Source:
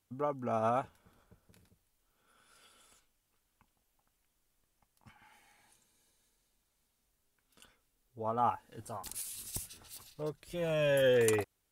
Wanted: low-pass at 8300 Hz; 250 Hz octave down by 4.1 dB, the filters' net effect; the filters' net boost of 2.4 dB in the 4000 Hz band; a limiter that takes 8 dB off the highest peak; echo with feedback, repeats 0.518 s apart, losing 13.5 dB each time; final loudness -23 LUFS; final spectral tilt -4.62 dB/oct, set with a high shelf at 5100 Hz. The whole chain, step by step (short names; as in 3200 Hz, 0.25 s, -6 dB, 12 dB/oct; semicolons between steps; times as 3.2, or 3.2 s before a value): LPF 8300 Hz; bell 250 Hz -5.5 dB; bell 4000 Hz +7 dB; high shelf 5100 Hz -8.5 dB; limiter -26.5 dBFS; feedback echo 0.518 s, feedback 21%, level -13.5 dB; gain +15.5 dB